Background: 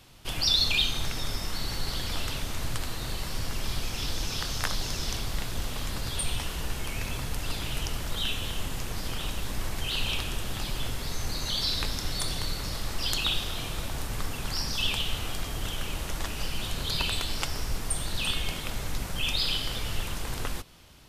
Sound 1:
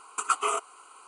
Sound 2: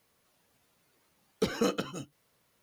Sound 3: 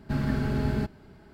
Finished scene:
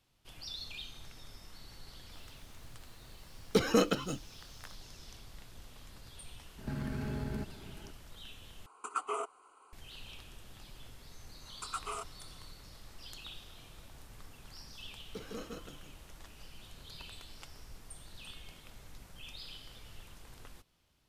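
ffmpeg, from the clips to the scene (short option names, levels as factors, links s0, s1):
-filter_complex "[2:a]asplit=2[s0][s1];[1:a]asplit=2[s2][s3];[0:a]volume=0.1[s4];[s0]acontrast=89[s5];[3:a]acompressor=threshold=0.02:ratio=6:attack=3.2:release=140:knee=1:detection=peak[s6];[s2]tiltshelf=f=1300:g=6.5[s7];[s3]asoftclip=type=tanh:threshold=0.178[s8];[s1]aecho=1:1:49.56|157.4:0.355|0.708[s9];[s4]asplit=2[s10][s11];[s10]atrim=end=8.664[s12];[s7]atrim=end=1.07,asetpts=PTS-STARTPTS,volume=0.316[s13];[s11]atrim=start=9.726[s14];[s5]atrim=end=2.62,asetpts=PTS-STARTPTS,volume=0.562,afade=t=in:d=0.004:c=hsin,afade=t=out:st=2.616:d=0.004:c=hsin,adelay=2130[s15];[s6]atrim=end=1.33,asetpts=PTS-STARTPTS,afade=t=in:d=0.004:c=hsin,afade=t=out:st=1.326:d=0.004:c=hsin,adelay=290178S[s16];[s8]atrim=end=1.07,asetpts=PTS-STARTPTS,volume=0.237,afade=t=in:d=0.004:c=hsin,afade=t=out:st=1.066:d=0.004:c=hsin,adelay=11440[s17];[s9]atrim=end=2.62,asetpts=PTS-STARTPTS,volume=0.15,afade=t=in:d=0.004:c=hsin,afade=t=out:st=2.616:d=0.004:c=hsin,adelay=13730[s18];[s12][s13]acrossfade=d=0.004:c1=hsin:c2=hsin[s19];[s19][s14]acrossfade=d=0.004:c1=hsin:c2=hsin[s20];[s20][s15][s16][s17][s18]amix=inputs=5:normalize=0"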